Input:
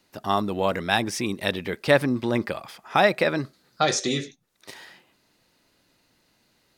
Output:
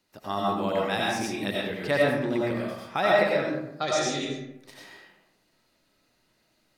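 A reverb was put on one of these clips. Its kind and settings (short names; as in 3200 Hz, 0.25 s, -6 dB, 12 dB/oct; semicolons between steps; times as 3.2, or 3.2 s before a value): digital reverb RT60 0.89 s, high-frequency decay 0.5×, pre-delay 55 ms, DRR -4.5 dB; gain -8.5 dB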